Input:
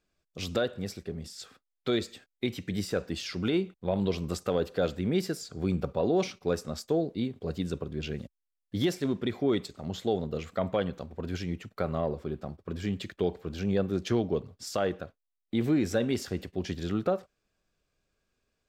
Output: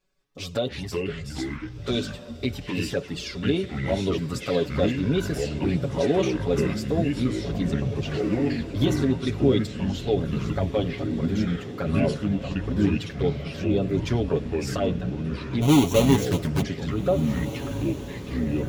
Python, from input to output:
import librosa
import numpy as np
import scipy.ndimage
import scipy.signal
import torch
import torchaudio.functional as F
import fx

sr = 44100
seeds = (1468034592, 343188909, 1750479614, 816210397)

y = fx.halfwave_hold(x, sr, at=(15.61, 16.61), fade=0.02)
y = fx.env_flanger(y, sr, rest_ms=5.3, full_db=-24.0)
y = y + 0.67 * np.pad(y, (int(7.2 * sr / 1000.0), 0))[:len(y)]
y = fx.echo_diffused(y, sr, ms=1643, feedback_pct=49, wet_db=-13.0)
y = fx.echo_pitch(y, sr, ms=185, semitones=-5, count=3, db_per_echo=-3.0)
y = y * librosa.db_to_amplitude(3.5)